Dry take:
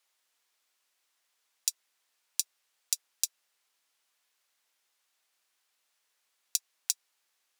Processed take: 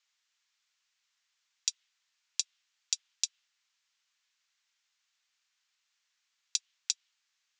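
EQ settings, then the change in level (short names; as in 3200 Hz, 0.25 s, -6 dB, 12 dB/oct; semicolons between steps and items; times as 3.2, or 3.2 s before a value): HPF 1400 Hz 12 dB/oct; steep low-pass 7300 Hz 48 dB/oct; dynamic EQ 3200 Hz, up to +6 dB, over -56 dBFS, Q 1.8; 0.0 dB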